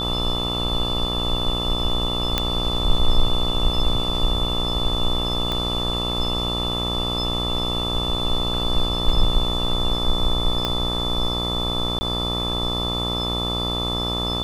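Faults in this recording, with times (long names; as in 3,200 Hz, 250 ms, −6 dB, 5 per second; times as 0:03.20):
mains buzz 60 Hz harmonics 22 −27 dBFS
whistle 3,500 Hz −25 dBFS
0:02.38: click −4 dBFS
0:05.52: click −12 dBFS
0:10.65: click −9 dBFS
0:11.99–0:12.01: drop-out 20 ms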